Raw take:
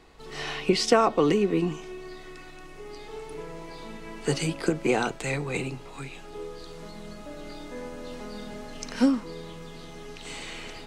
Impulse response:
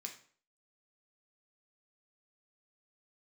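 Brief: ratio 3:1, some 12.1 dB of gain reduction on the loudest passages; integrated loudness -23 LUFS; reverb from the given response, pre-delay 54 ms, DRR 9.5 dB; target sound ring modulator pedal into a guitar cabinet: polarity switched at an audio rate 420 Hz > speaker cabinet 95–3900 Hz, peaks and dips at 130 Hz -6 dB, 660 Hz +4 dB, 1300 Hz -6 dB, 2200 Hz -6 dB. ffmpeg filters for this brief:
-filter_complex "[0:a]acompressor=threshold=-33dB:ratio=3,asplit=2[a][b];[1:a]atrim=start_sample=2205,adelay=54[c];[b][c]afir=irnorm=-1:irlink=0,volume=-6dB[d];[a][d]amix=inputs=2:normalize=0,aeval=exprs='val(0)*sgn(sin(2*PI*420*n/s))':c=same,highpass=95,equalizer=f=130:t=q:w=4:g=-6,equalizer=f=660:t=q:w=4:g=4,equalizer=f=1.3k:t=q:w=4:g=-6,equalizer=f=2.2k:t=q:w=4:g=-6,lowpass=f=3.9k:w=0.5412,lowpass=f=3.9k:w=1.3066,volume=15dB"

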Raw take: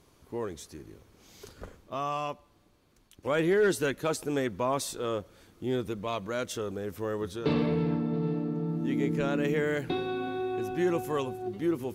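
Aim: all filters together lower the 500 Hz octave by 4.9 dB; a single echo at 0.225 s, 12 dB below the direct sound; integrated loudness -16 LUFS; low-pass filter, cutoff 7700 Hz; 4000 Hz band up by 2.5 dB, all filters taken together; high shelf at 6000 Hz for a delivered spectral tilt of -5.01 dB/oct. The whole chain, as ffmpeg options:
-af "lowpass=7.7k,equalizer=f=500:t=o:g=-6.5,equalizer=f=4k:t=o:g=4.5,highshelf=f=6k:g=-3.5,aecho=1:1:225:0.251,volume=16.5dB"

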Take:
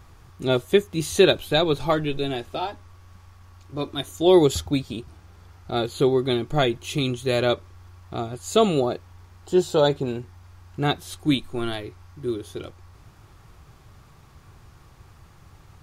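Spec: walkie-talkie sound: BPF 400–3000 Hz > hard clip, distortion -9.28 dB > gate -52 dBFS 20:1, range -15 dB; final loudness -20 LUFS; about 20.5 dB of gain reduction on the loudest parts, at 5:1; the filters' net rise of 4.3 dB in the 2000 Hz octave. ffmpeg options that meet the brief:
-af "equalizer=f=2k:t=o:g=7,acompressor=threshold=-35dB:ratio=5,highpass=400,lowpass=3k,asoftclip=type=hard:threshold=-37dB,agate=range=-15dB:threshold=-52dB:ratio=20,volume=24.5dB"

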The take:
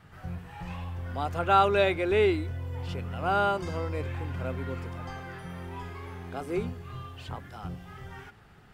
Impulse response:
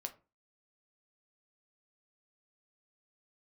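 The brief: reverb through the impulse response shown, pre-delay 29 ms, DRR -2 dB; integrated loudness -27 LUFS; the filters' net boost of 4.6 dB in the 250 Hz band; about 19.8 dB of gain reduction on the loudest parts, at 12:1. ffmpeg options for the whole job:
-filter_complex "[0:a]equalizer=f=250:t=o:g=7.5,acompressor=threshold=-37dB:ratio=12,asplit=2[a][b];[1:a]atrim=start_sample=2205,adelay=29[c];[b][c]afir=irnorm=-1:irlink=0,volume=4.5dB[d];[a][d]amix=inputs=2:normalize=0,volume=12dB"

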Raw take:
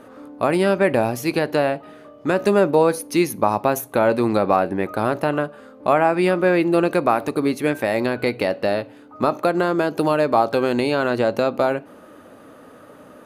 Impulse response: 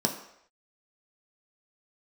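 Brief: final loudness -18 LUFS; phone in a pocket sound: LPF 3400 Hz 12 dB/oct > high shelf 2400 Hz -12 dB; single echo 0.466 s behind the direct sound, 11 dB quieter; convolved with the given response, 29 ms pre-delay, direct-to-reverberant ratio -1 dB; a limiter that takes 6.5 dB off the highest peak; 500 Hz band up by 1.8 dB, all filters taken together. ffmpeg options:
-filter_complex "[0:a]equalizer=f=500:t=o:g=3,alimiter=limit=-8dB:level=0:latency=1,aecho=1:1:466:0.282,asplit=2[a][b];[1:a]atrim=start_sample=2205,adelay=29[c];[b][c]afir=irnorm=-1:irlink=0,volume=-7.5dB[d];[a][d]amix=inputs=2:normalize=0,lowpass=3.4k,highshelf=f=2.4k:g=-12,volume=-5dB"

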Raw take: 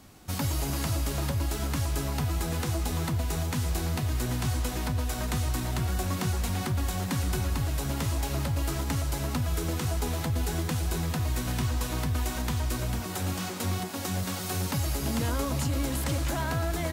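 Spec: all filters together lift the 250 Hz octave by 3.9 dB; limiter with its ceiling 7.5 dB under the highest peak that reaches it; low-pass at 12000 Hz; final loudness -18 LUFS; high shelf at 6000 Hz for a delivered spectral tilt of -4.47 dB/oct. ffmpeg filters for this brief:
-af "lowpass=12k,equalizer=f=250:t=o:g=5,highshelf=f=6k:g=8,volume=14dB,alimiter=limit=-9dB:level=0:latency=1"

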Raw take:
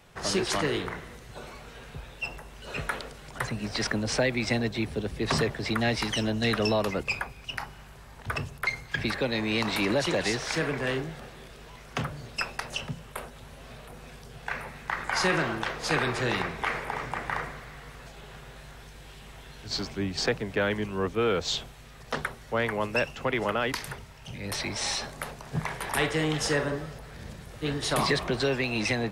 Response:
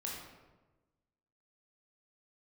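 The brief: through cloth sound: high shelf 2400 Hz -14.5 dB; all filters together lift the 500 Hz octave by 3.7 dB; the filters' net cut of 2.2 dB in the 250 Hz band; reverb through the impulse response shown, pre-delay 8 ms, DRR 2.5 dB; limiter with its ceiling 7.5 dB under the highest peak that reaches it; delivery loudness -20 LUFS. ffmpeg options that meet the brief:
-filter_complex "[0:a]equalizer=f=250:t=o:g=-5,equalizer=f=500:t=o:g=6.5,alimiter=limit=-17.5dB:level=0:latency=1,asplit=2[a][b];[1:a]atrim=start_sample=2205,adelay=8[c];[b][c]afir=irnorm=-1:irlink=0,volume=-2.5dB[d];[a][d]amix=inputs=2:normalize=0,highshelf=f=2.4k:g=-14.5,volume=10dB"

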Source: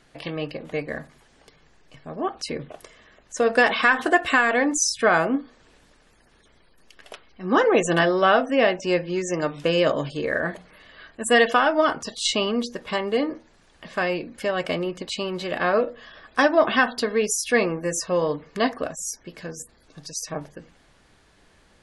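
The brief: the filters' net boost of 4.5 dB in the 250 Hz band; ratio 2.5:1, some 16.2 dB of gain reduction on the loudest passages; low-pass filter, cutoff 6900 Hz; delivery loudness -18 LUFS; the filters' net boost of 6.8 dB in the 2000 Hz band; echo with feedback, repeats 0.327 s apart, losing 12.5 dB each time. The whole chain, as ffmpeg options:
-af "lowpass=6.9k,equalizer=f=250:t=o:g=5.5,equalizer=f=2k:t=o:g=8.5,acompressor=threshold=-34dB:ratio=2.5,aecho=1:1:327|654|981:0.237|0.0569|0.0137,volume=14dB"

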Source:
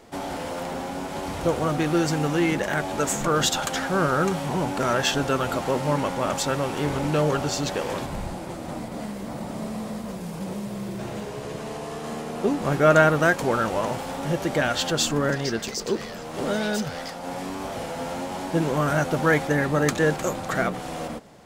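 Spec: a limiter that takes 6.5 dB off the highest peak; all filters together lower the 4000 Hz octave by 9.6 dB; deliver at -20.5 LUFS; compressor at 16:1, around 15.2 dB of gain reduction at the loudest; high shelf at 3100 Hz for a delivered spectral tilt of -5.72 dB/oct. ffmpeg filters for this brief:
-af "highshelf=f=3.1k:g=-8.5,equalizer=f=4k:t=o:g=-6,acompressor=threshold=-27dB:ratio=16,volume=13dB,alimiter=limit=-10.5dB:level=0:latency=1"

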